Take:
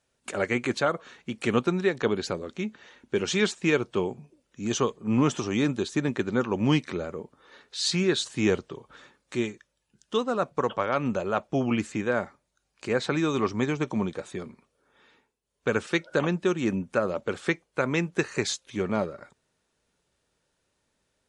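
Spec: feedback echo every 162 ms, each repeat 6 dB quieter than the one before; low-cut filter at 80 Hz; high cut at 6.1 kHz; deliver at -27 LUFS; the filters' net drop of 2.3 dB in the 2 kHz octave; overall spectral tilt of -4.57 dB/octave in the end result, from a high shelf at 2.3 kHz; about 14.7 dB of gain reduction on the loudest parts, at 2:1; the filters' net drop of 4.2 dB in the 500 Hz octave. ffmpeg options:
-af "highpass=80,lowpass=6100,equalizer=f=500:t=o:g=-5.5,equalizer=f=2000:t=o:g=-5,highshelf=f=2300:g=4.5,acompressor=threshold=0.00398:ratio=2,aecho=1:1:162|324|486|648|810|972:0.501|0.251|0.125|0.0626|0.0313|0.0157,volume=5.31"

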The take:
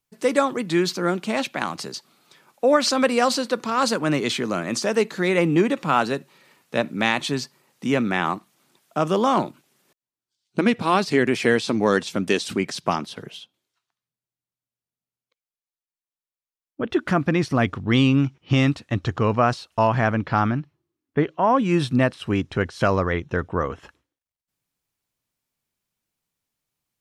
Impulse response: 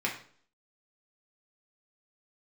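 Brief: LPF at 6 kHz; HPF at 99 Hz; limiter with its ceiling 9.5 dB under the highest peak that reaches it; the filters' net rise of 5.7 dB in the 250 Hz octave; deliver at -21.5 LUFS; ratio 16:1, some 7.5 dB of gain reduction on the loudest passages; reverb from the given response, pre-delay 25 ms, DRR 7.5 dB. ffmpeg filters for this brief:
-filter_complex "[0:a]highpass=99,lowpass=6000,equalizer=f=250:t=o:g=7,acompressor=threshold=0.158:ratio=16,alimiter=limit=0.188:level=0:latency=1,asplit=2[s0][s1];[1:a]atrim=start_sample=2205,adelay=25[s2];[s1][s2]afir=irnorm=-1:irlink=0,volume=0.178[s3];[s0][s3]amix=inputs=2:normalize=0,volume=1.5"

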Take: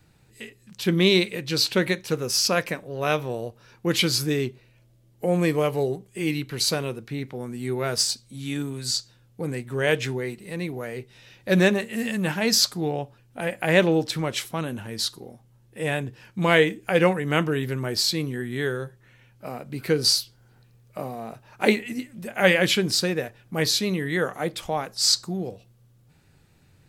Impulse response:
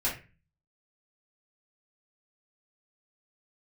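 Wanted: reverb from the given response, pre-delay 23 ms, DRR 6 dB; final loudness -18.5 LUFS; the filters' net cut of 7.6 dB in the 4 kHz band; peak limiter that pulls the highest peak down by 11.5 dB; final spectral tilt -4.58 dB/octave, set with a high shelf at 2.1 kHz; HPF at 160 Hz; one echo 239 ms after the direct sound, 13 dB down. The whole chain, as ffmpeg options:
-filter_complex "[0:a]highpass=160,highshelf=f=2100:g=-6.5,equalizer=f=4000:t=o:g=-3,alimiter=limit=0.158:level=0:latency=1,aecho=1:1:239:0.224,asplit=2[s0][s1];[1:a]atrim=start_sample=2205,adelay=23[s2];[s1][s2]afir=irnorm=-1:irlink=0,volume=0.211[s3];[s0][s3]amix=inputs=2:normalize=0,volume=3.16"

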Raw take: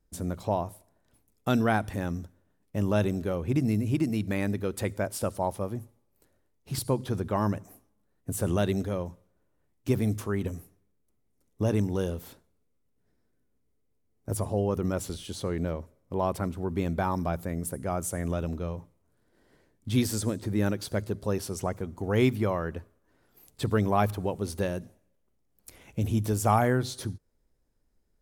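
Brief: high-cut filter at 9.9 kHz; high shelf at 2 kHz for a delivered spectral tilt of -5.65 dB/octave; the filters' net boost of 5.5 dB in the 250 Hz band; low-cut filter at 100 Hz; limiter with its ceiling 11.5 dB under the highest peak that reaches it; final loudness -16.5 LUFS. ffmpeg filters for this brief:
-af "highpass=100,lowpass=9900,equalizer=f=250:t=o:g=7,highshelf=f=2000:g=5,volume=5.01,alimiter=limit=0.596:level=0:latency=1"

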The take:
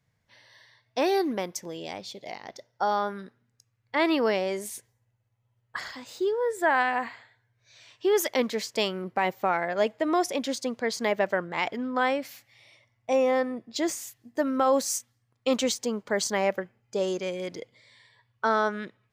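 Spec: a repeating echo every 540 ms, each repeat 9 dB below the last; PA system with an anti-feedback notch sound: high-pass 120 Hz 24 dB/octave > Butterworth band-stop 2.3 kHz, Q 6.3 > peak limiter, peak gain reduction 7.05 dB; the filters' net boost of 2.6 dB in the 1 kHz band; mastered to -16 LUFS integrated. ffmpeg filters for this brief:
-af "highpass=f=120:w=0.5412,highpass=f=120:w=1.3066,asuperstop=centerf=2300:order=8:qfactor=6.3,equalizer=f=1000:t=o:g=3.5,aecho=1:1:540|1080|1620|2160:0.355|0.124|0.0435|0.0152,volume=4.47,alimiter=limit=0.668:level=0:latency=1"

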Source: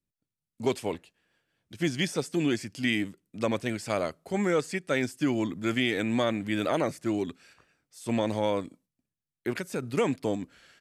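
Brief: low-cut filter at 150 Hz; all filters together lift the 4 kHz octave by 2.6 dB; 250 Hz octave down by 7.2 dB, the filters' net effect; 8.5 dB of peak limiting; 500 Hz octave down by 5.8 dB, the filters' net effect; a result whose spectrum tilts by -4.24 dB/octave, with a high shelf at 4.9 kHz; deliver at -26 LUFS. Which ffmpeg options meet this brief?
-af "highpass=150,equalizer=f=250:t=o:g=-7,equalizer=f=500:t=o:g=-5,equalizer=f=4000:t=o:g=7,highshelf=f=4900:g=-8,volume=3.16,alimiter=limit=0.266:level=0:latency=1"

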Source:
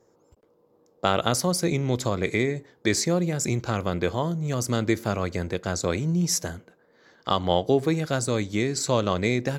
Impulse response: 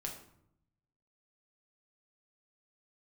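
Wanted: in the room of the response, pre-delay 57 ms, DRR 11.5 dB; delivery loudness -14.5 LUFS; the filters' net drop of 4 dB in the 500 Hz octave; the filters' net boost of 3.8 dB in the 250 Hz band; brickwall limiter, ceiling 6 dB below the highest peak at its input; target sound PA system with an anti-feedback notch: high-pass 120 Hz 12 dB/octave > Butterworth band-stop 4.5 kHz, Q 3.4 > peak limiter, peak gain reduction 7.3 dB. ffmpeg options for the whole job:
-filter_complex "[0:a]equalizer=f=250:t=o:g=8.5,equalizer=f=500:t=o:g=-8.5,alimiter=limit=0.211:level=0:latency=1,asplit=2[s0][s1];[1:a]atrim=start_sample=2205,adelay=57[s2];[s1][s2]afir=irnorm=-1:irlink=0,volume=0.299[s3];[s0][s3]amix=inputs=2:normalize=0,highpass=120,asuperstop=centerf=4500:order=8:qfactor=3.4,volume=5.31,alimiter=limit=0.596:level=0:latency=1"

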